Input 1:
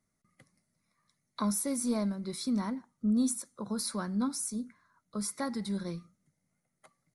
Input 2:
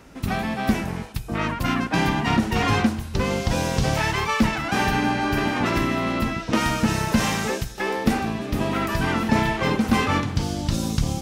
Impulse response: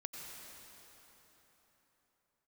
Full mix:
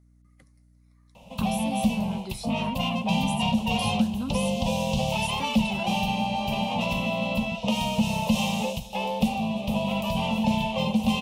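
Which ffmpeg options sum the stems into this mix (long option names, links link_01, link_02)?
-filter_complex "[0:a]acrossover=split=260[link_01][link_02];[link_02]acompressor=threshold=-38dB:ratio=6[link_03];[link_01][link_03]amix=inputs=2:normalize=0,volume=1.5dB[link_04];[1:a]firequalizer=gain_entry='entry(120,0);entry(210,14);entry(310,-21);entry(520,12);entry(970,10);entry(1500,-25);entry(2700,14);entry(4800,1);entry(12000,4)':delay=0.05:min_phase=1,adelay=1150,volume=-8dB[link_05];[link_04][link_05]amix=inputs=2:normalize=0,acrossover=split=190|3000[link_06][link_07][link_08];[link_07]acompressor=threshold=-26dB:ratio=6[link_09];[link_06][link_09][link_08]amix=inputs=3:normalize=0,aeval=exprs='val(0)+0.00141*(sin(2*PI*60*n/s)+sin(2*PI*2*60*n/s)/2+sin(2*PI*3*60*n/s)/3+sin(2*PI*4*60*n/s)/4+sin(2*PI*5*60*n/s)/5)':channel_layout=same"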